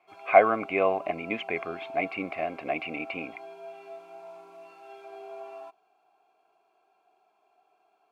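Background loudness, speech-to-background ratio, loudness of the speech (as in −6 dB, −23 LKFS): −44.5 LKFS, 17.0 dB, −27.5 LKFS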